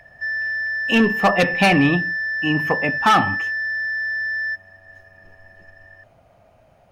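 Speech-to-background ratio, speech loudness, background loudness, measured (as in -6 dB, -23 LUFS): 3.5 dB, -19.0 LUFS, -22.5 LUFS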